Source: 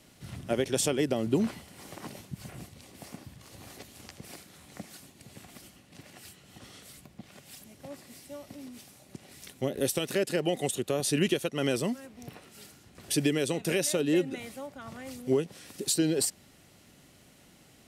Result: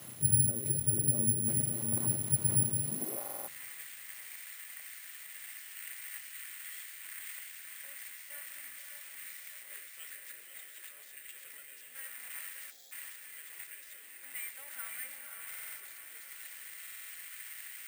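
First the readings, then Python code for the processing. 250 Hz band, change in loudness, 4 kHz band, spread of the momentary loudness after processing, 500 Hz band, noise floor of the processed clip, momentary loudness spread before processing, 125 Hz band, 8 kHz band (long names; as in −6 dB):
−13.5 dB, −5.0 dB, −14.0 dB, 19 LU, −21.0 dB, −52 dBFS, 21 LU, −1.0 dB, +2.0 dB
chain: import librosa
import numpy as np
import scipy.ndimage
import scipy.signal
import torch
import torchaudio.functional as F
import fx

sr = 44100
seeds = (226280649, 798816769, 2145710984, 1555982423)

y = x + 0.5 * 10.0 ** (-28.5 / 20.0) * np.diff(np.sign(x), prepend=np.sign(x[:1]))
y = fx.rotary_switch(y, sr, hz=0.8, then_hz=7.5, switch_at_s=15.24)
y = fx.over_compress(y, sr, threshold_db=-40.0, ratio=-1.0)
y = 10.0 ** (-35.5 / 20.0) * np.tanh(y / 10.0 ** (-35.5 / 20.0))
y = fx.echo_diffused(y, sr, ms=559, feedback_pct=59, wet_db=-4)
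y = fx.spec_erase(y, sr, start_s=12.71, length_s=0.21, low_hz=850.0, high_hz=3200.0)
y = fx.filter_sweep_highpass(y, sr, from_hz=120.0, to_hz=1900.0, start_s=2.83, end_s=3.47, q=3.2)
y = fx.spacing_loss(y, sr, db_at_10k=39)
y = fx.rev_double_slope(y, sr, seeds[0], early_s=0.45, late_s=2.9, knee_db=-18, drr_db=11.5)
y = (np.kron(y[::4], np.eye(4)[0]) * 4)[:len(y)]
y = fx.buffer_glitch(y, sr, at_s=(3.2, 15.48, 16.82), block=2048, repeats=5)
y = y * librosa.db_to_amplitude(2.0)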